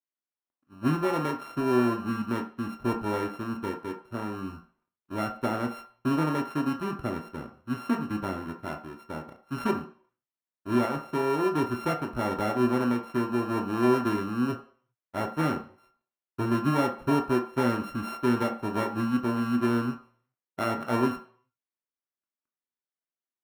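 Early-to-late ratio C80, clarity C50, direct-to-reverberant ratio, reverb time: 15.0 dB, 10.5 dB, 2.0 dB, 0.45 s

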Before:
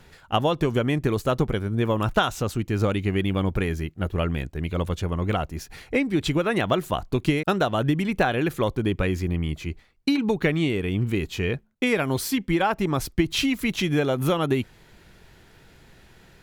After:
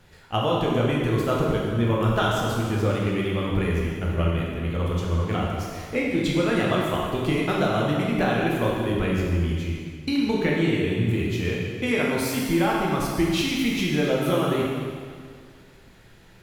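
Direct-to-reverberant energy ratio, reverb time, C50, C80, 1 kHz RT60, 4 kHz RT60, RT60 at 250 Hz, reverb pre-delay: -4.0 dB, 2.0 s, -0.5 dB, 1.0 dB, 2.0 s, 1.9 s, 2.0 s, 6 ms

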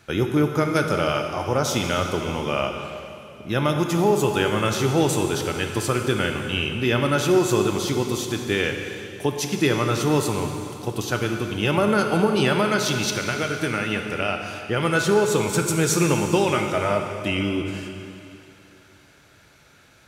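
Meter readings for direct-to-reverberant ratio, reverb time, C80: 4.0 dB, 2.7 s, 5.5 dB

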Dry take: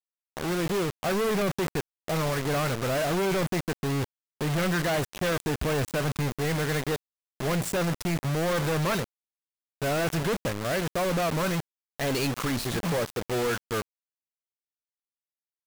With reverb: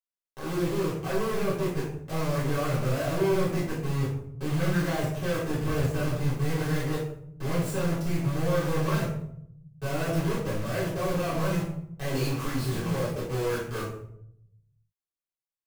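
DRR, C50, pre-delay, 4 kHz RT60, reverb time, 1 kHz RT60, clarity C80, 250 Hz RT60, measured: -9.0 dB, 4.0 dB, 3 ms, 0.40 s, 0.70 s, 0.65 s, 7.0 dB, 1.4 s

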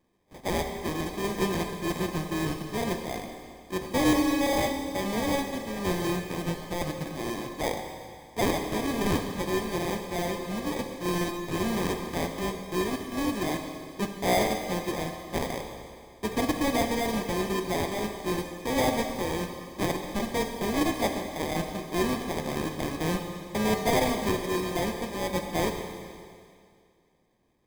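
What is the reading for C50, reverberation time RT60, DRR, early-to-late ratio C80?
5.5 dB, 2.2 s, 4.0 dB, 6.5 dB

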